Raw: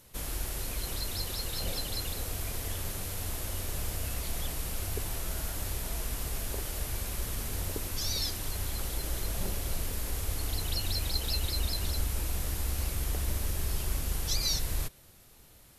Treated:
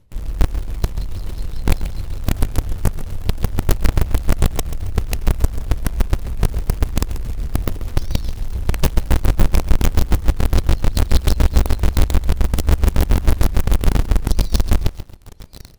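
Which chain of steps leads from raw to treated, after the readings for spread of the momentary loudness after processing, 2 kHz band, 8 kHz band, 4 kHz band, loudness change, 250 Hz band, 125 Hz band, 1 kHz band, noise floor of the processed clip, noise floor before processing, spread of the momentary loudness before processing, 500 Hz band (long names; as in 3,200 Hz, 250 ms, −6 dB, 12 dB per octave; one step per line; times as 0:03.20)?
8 LU, +10.0 dB, +2.0 dB, +2.5 dB, +12.5 dB, +18.0 dB, +16.5 dB, +13.5 dB, −35 dBFS, −56 dBFS, 5 LU, +14.0 dB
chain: RIAA equalisation playback
amplitude tremolo 7 Hz, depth 67%
parametric band 1,500 Hz −2.5 dB 0.65 octaves
feedback echo with a high-pass in the loop 1,098 ms, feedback 77%, high-pass 170 Hz, level −21 dB
in parallel at −3.5 dB: log-companded quantiser 2 bits
on the sum: automatic gain control gain up to 5 dB
feedback echo at a low word length 136 ms, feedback 35%, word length 6 bits, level −13 dB
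level −2 dB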